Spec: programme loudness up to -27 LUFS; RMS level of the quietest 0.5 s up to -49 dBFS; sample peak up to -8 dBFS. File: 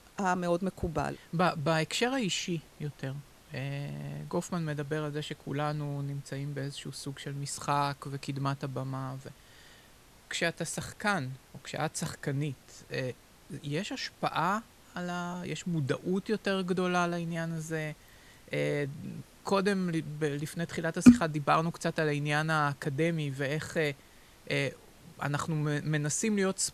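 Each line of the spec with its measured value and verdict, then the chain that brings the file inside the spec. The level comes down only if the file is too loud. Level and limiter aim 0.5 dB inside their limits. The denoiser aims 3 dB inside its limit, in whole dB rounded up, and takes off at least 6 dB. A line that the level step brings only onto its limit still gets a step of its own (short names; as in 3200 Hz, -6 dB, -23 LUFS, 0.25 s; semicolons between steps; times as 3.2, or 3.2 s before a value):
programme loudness -32.0 LUFS: OK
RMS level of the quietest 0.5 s -57 dBFS: OK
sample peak -4.5 dBFS: fail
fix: limiter -8.5 dBFS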